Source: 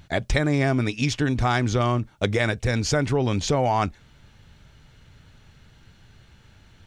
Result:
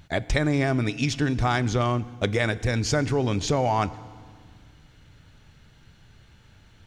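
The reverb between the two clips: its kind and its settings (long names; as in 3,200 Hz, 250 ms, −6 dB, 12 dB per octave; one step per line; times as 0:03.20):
feedback delay network reverb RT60 1.8 s, low-frequency decay 1.55×, high-frequency decay 0.9×, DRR 16.5 dB
level −1.5 dB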